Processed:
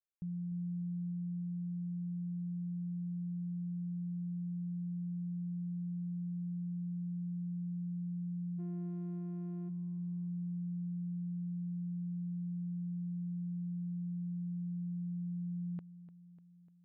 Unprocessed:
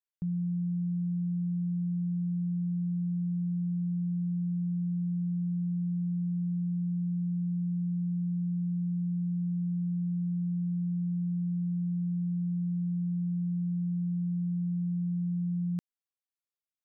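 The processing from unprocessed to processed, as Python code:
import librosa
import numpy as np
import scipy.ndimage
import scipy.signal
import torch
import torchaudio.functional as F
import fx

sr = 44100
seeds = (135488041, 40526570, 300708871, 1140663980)

y = fx.lower_of_two(x, sr, delay_ms=6.8, at=(8.58, 9.68), fade=0.02)
y = fx.air_absorb(y, sr, metres=480.0)
y = fx.echo_feedback(y, sr, ms=298, feedback_pct=58, wet_db=-15)
y = y * 10.0 ** (-8.0 / 20.0)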